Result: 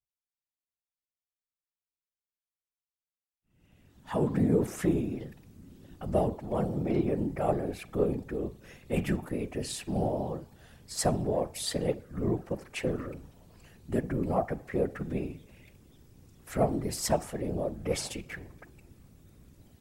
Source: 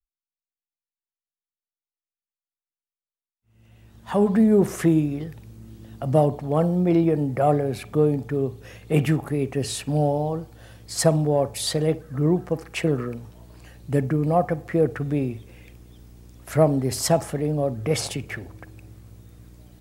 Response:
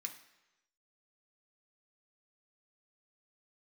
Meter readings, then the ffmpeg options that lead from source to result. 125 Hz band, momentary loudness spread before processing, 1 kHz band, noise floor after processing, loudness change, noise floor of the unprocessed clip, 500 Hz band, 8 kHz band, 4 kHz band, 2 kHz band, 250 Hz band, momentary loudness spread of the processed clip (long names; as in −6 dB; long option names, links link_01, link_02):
−10.0 dB, 12 LU, −8.0 dB, below −85 dBFS, −8.5 dB, below −85 dBFS, −8.5 dB, −6.5 dB, −7.5 dB, −7.5 dB, −8.5 dB, 11 LU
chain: -filter_complex "[0:a]asplit=2[link_01][link_02];[1:a]atrim=start_sample=2205,afade=type=out:start_time=0.39:duration=0.01,atrim=end_sample=17640,highshelf=frequency=7500:gain=-4[link_03];[link_02][link_03]afir=irnorm=-1:irlink=0,volume=-10dB[link_04];[link_01][link_04]amix=inputs=2:normalize=0,afftfilt=real='hypot(re,im)*cos(2*PI*random(0))':imag='hypot(re,im)*sin(2*PI*random(1))':win_size=512:overlap=0.75,volume=-2.5dB"